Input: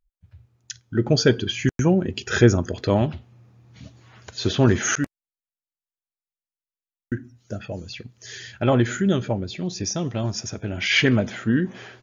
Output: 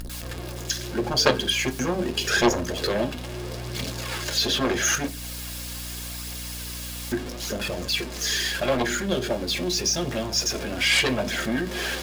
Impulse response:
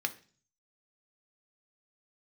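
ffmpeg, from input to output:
-filter_complex "[0:a]aeval=exprs='val(0)+0.5*0.0299*sgn(val(0))':c=same,asplit=2[s0][s1];[s1]acompressor=threshold=0.0282:ratio=6,volume=1.33[s2];[s0][s2]amix=inputs=2:normalize=0,aphaser=in_gain=1:out_gain=1:delay=4.3:decay=0.37:speed=0.79:type=triangular,aeval=exprs='1.19*(cos(1*acos(clip(val(0)/1.19,-1,1)))-cos(1*PI/2))+0.473*(cos(3*acos(clip(val(0)/1.19,-1,1)))-cos(3*PI/2))+0.133*(cos(7*acos(clip(val(0)/1.19,-1,1)))-cos(7*PI/2))':c=same[s3];[1:a]atrim=start_sample=2205,asetrate=88200,aresample=44100[s4];[s3][s4]afir=irnorm=-1:irlink=0,aeval=exprs='val(0)+0.0126*(sin(2*PI*60*n/s)+sin(2*PI*2*60*n/s)/2+sin(2*PI*3*60*n/s)/3+sin(2*PI*4*60*n/s)/4+sin(2*PI*5*60*n/s)/5)':c=same,volume=1.19"

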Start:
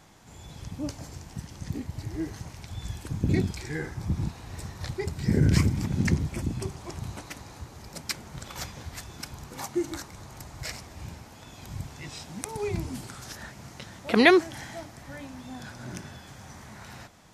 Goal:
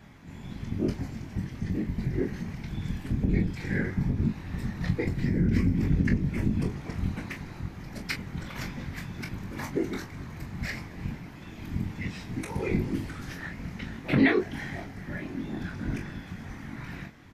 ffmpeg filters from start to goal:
-filter_complex "[0:a]equalizer=f=125:t=o:w=1:g=12,equalizer=f=250:t=o:w=1:g=9,equalizer=f=2000:t=o:w=1:g=10,equalizer=f=8000:t=o:w=1:g=-8,acompressor=threshold=0.141:ratio=6,afftfilt=real='hypot(re,im)*cos(2*PI*random(0))':imag='hypot(re,im)*sin(2*PI*random(1))':win_size=512:overlap=0.75,asplit=2[s0][s1];[s1]aecho=0:1:22|41:0.531|0.316[s2];[s0][s2]amix=inputs=2:normalize=0,volume=1.12"

